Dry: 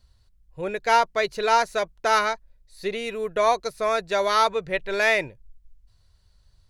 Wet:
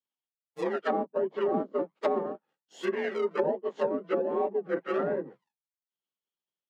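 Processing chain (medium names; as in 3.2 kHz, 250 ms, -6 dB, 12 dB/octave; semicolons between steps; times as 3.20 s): frequency axis rescaled in octaves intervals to 89%; in parallel at -3.5 dB: decimation with a swept rate 41×, swing 60% 1.3 Hz; on the sum: low-pass that closes with the level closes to 410 Hz, closed at -19 dBFS; Bessel high-pass 320 Hz, order 8; expander -57 dBFS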